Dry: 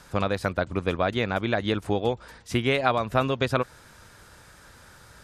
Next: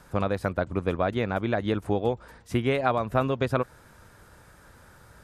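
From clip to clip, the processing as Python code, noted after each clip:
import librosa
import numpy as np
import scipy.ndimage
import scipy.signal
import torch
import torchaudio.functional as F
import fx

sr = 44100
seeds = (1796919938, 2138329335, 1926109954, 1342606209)

y = fx.peak_eq(x, sr, hz=4600.0, db=-8.5, octaves=2.5)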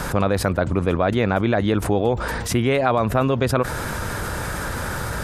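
y = fx.env_flatten(x, sr, amount_pct=70)
y = F.gain(torch.from_numpy(y), 3.0).numpy()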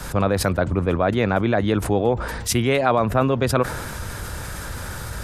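y = fx.band_widen(x, sr, depth_pct=70)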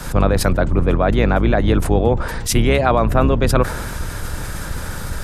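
y = fx.octave_divider(x, sr, octaves=2, level_db=3.0)
y = F.gain(torch.from_numpy(y), 2.5).numpy()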